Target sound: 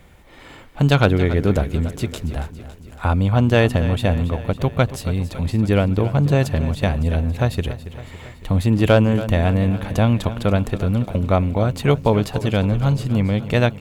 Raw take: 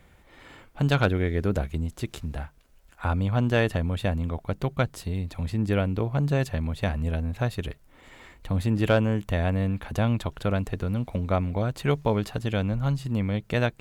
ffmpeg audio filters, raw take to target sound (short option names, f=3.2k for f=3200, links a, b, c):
-filter_complex "[0:a]equalizer=f=1.6k:w=2.2:g=-3,asplit=2[a][b];[b]aecho=0:1:279|558|837|1116|1395|1674:0.2|0.12|0.0718|0.0431|0.0259|0.0155[c];[a][c]amix=inputs=2:normalize=0,volume=7.5dB"